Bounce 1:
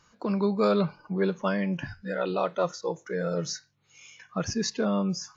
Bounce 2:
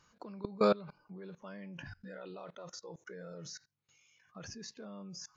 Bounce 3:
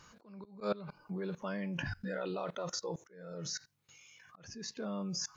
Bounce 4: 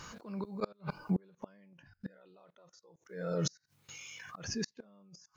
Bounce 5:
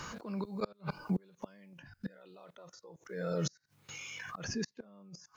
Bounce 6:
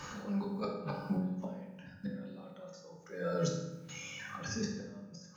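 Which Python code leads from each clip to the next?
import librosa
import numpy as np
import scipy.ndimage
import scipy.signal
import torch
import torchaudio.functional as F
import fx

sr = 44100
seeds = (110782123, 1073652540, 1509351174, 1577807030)

y1 = fx.level_steps(x, sr, step_db=22)
y1 = y1 * librosa.db_to_amplitude(-2.5)
y2 = fx.auto_swell(y1, sr, attack_ms=536.0)
y2 = y2 * librosa.db_to_amplitude(9.0)
y3 = fx.gate_flip(y2, sr, shuts_db=-32.0, range_db=-33)
y3 = y3 * librosa.db_to_amplitude(10.5)
y4 = fx.band_squash(y3, sr, depth_pct=40)
y4 = y4 * librosa.db_to_amplitude(1.0)
y5 = fx.rev_fdn(y4, sr, rt60_s=1.0, lf_ratio=1.5, hf_ratio=0.7, size_ms=11.0, drr_db=-3.0)
y5 = y5 * librosa.db_to_amplitude(-4.0)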